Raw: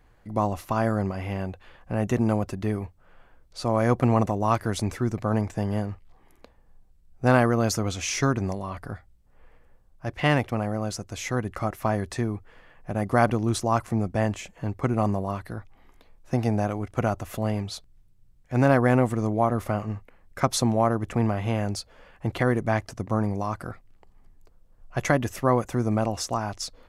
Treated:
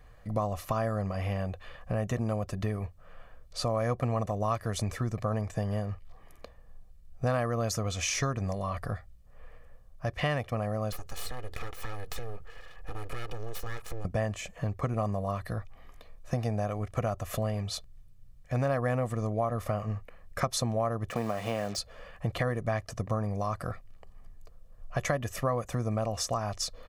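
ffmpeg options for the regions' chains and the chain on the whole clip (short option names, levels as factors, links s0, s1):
-filter_complex "[0:a]asettb=1/sr,asplit=3[s0][s1][s2];[s0]atrim=end=10.924[s3];[s1]atrim=start=10.92:end=14.05,asetpts=PTS-STARTPTS,afade=t=in:d=0.004:c=qsin,afade=t=out:st=3.126:d=0.004:c=qsin,acompressor=threshold=0.0178:ratio=4:attack=3.2:release=140:knee=1:detection=peak,aeval=exprs='abs(val(0))':c=same,aecho=1:1:2.4:0.54,atrim=end_sample=138033[s4];[s2]atrim=start=14.046[s5];[s3][s4]acrossfade=d=0.004:c1=hsin:c2=qsin[s6];[s6][s5]acrossfade=d=0.004:c1=qsin:c2=hsin,asettb=1/sr,asplit=3[s7][s8][s9];[s7]atrim=end=21.104[s10];[s8]atrim=start=21.1:end=21.78,asetpts=PTS-STARTPTS,afade=t=in:d=0.004:c=qsin,afade=t=out:st=0.676:d=0.004:c=qsin,highpass=200,lowpass=6900,acrusher=bits=6:mix=0:aa=0.5[s11];[s9]atrim=start=21.776[s12];[s10][s11]acrossfade=d=0.004:c1=hsin:c2=qsin[s13];[s13][s12]acrossfade=d=0.004:c1=qsin:c2=hsin,bandreject=f=380:w=12,aecho=1:1:1.7:0.49,acompressor=threshold=0.0282:ratio=3,volume=1.26"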